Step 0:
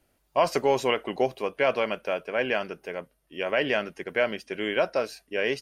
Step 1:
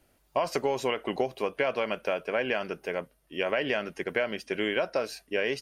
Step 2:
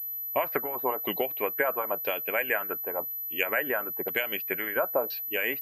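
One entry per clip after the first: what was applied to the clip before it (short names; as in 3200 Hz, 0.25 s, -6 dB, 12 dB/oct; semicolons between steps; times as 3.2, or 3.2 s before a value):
compressor 6:1, threshold -27 dBFS, peak gain reduction 10.5 dB; gain +3 dB
harmonic-percussive split harmonic -15 dB; LFO low-pass saw down 0.98 Hz 820–4100 Hz; pulse-width modulation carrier 12000 Hz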